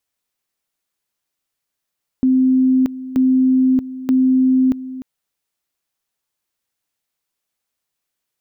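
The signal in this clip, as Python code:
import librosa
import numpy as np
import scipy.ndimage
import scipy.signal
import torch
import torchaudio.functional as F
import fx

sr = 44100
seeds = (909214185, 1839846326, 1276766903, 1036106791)

y = fx.two_level_tone(sr, hz=259.0, level_db=-10.5, drop_db=15.5, high_s=0.63, low_s=0.3, rounds=3)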